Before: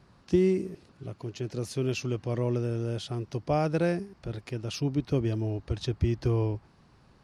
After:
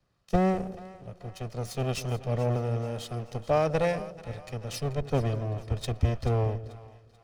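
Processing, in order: comb filter that takes the minimum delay 1.6 ms; two-band feedback delay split 610 Hz, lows 201 ms, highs 436 ms, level -12.5 dB; three bands expanded up and down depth 40%

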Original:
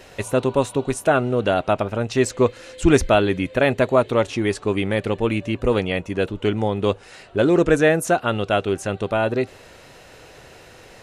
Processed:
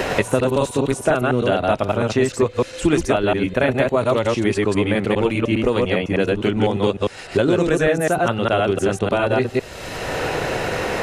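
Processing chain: chunks repeated in reverse 101 ms, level -0.5 dB; three bands compressed up and down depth 100%; trim -2 dB

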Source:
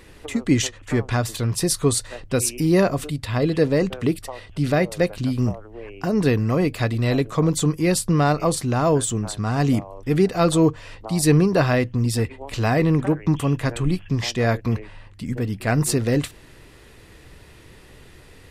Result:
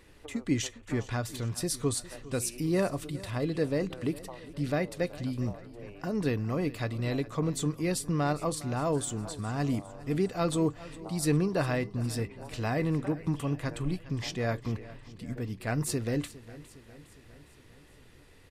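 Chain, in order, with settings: feedback comb 290 Hz, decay 0.21 s, harmonics all, mix 40%; on a send: feedback delay 408 ms, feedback 58%, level -18 dB; on the sum: trim -6.5 dB

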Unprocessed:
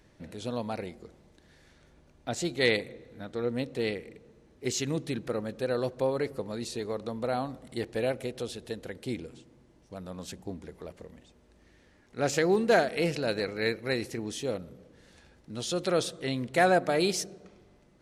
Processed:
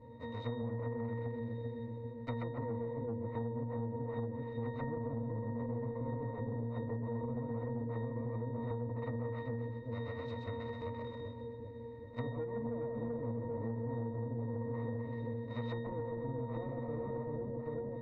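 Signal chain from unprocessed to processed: square wave that keeps the level; treble shelf 2.3 kHz -10.5 dB; Chebyshev shaper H 6 -6 dB, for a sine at -13 dBFS; peaking EQ 500 Hz +10.5 dB 0.28 oct; two-band feedback delay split 510 Hz, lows 392 ms, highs 128 ms, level -3.5 dB; peak limiter -14 dBFS, peak gain reduction 12 dB; hum notches 60/120/180/240 Hz; low-pass that closes with the level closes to 400 Hz, closed at -20.5 dBFS; pitch-class resonator A#, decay 0.54 s; compression, threshold -40 dBFS, peak gain reduction 10 dB; spectrum-flattening compressor 2:1; trim +6.5 dB

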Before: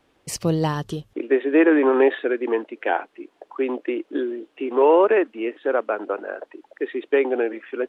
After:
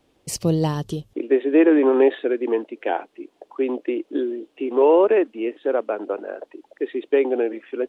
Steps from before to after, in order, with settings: peaking EQ 1.5 kHz -8.5 dB 1.6 oct; trim +2 dB

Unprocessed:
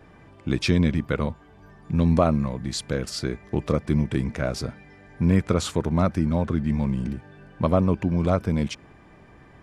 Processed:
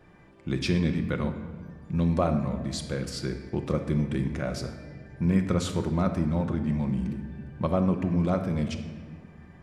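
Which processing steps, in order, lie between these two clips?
simulated room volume 1600 m³, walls mixed, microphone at 0.94 m; trim -5.5 dB

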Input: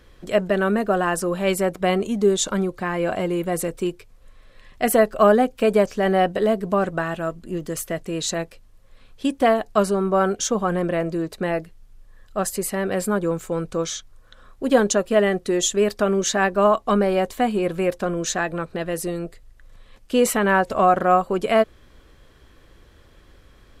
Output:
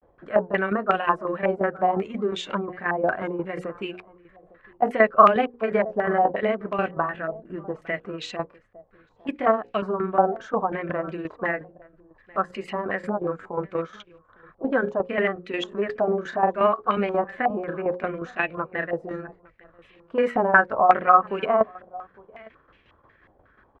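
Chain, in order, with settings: high-pass 130 Hz 6 dB/octave; hum notches 60/120/180/240/300/360/420/480/540 Hz; granulator, spray 19 ms, pitch spread up and down by 0 st; tremolo saw down 5.6 Hz, depth 65%; on a send: delay 857 ms -23.5 dB; on the sum: step-sequenced low-pass 5.5 Hz 760–2600 Hz; trim -1 dB

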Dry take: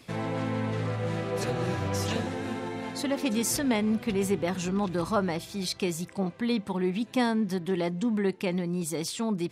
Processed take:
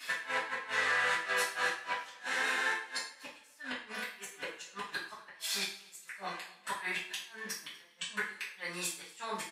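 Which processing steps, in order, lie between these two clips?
high-pass 1.2 kHz 12 dB/octave; peaking EQ 1.7 kHz +9 dB 0.37 oct; compression 16:1, threshold -39 dBFS, peak gain reduction 14.5 dB; inverted gate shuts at -32 dBFS, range -33 dB; on a send: delay 243 ms -24 dB; on the sum: two-slope reverb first 0.43 s, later 1.8 s, from -26 dB, DRR -10 dB; trim +2 dB

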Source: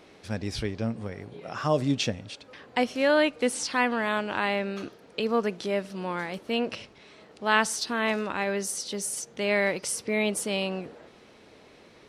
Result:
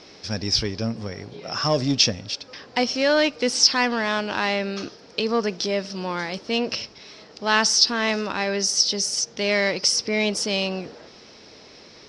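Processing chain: in parallel at -4 dB: saturation -25 dBFS, distortion -8 dB; on the sum: resonant low-pass 5.3 kHz, resonance Q 7.6

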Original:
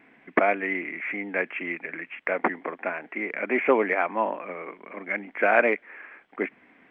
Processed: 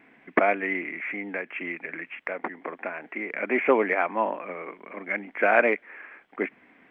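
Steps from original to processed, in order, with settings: 0.88–3.34 s: compression 6:1, threshold -28 dBFS, peak gain reduction 10 dB

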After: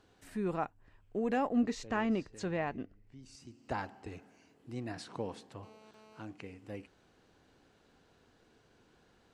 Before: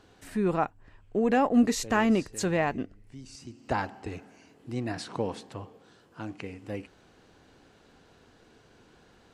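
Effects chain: 1.53–3.23 s: distance through air 100 m; 5.63–6.22 s: mobile phone buzz -51 dBFS; trim -8 dB

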